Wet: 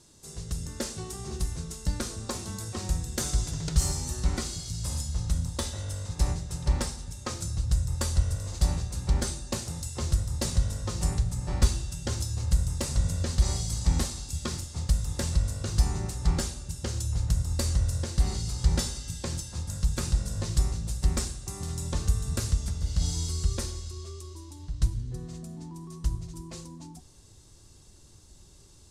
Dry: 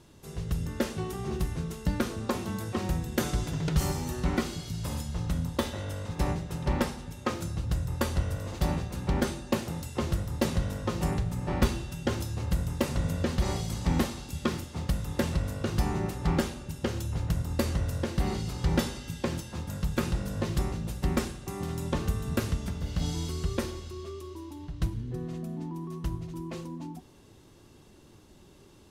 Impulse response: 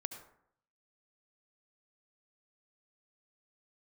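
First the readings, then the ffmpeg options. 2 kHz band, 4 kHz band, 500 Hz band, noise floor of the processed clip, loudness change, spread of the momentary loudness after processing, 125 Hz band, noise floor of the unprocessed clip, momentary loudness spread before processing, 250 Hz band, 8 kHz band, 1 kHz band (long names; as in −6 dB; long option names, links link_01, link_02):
−5.0 dB, +3.0 dB, −6.5 dB, −53 dBFS, +1.5 dB, 10 LU, +2.0 dB, −55 dBFS, 7 LU, −6.0 dB, +8.5 dB, −5.5 dB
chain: -af "asubboost=boost=4:cutoff=110,lowpass=frequency=7900:width_type=q:width=2,aexciter=amount=1.9:drive=8.2:freq=4000,volume=-5dB"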